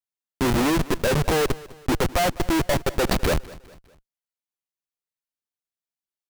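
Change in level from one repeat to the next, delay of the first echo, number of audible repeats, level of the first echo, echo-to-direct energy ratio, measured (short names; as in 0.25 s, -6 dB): -7.5 dB, 0.203 s, 2, -20.0 dB, -19.0 dB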